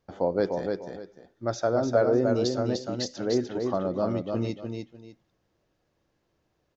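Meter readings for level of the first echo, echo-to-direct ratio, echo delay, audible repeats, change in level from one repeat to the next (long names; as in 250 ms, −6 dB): −4.5 dB, −4.0 dB, 299 ms, 2, −12.0 dB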